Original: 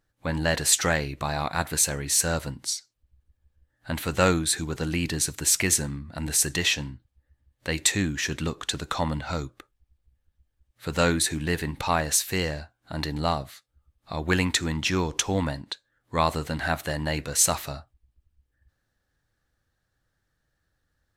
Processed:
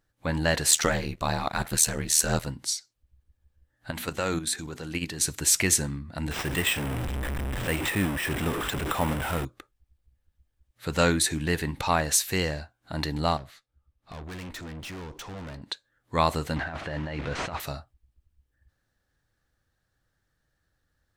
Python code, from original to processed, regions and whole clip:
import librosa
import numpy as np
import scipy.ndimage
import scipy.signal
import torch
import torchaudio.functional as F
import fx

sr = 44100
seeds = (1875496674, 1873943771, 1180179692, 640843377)

y = fx.chain(x, sr, fx.leveller(passes=1),
    fx.filter_lfo_notch(shape='sine', hz=8.1, low_hz=300.0, high_hz=2400.0, q=2.8),
    fx.ring_mod(carrier_hz=39.0), at=(0.7, 2.46))
y = fx.chain(y, sr, fx.low_shelf(hz=94.0, db=-8.0),
    fx.hum_notches(base_hz=60, count=5),
    fx.level_steps(step_db=9), at=(3.91, 5.21))
y = fx.chain(y, sr, fx.delta_mod(bps=64000, step_db=-23.5),
    fx.peak_eq(hz=4400.0, db=-14.0, octaves=0.35),
    fx.resample_bad(factor=4, down='filtered', up='hold'), at=(6.31, 9.45))
y = fx.chain(y, sr, fx.lowpass(hz=3700.0, slope=6),
    fx.tube_stage(drive_db=37.0, bias=0.55), at=(13.37, 15.62))
y = fx.chain(y, sr, fx.delta_mod(bps=64000, step_db=-32.0),
    fx.lowpass(hz=2600.0, slope=12),
    fx.over_compress(threshold_db=-32.0, ratio=-1.0), at=(16.56, 17.6))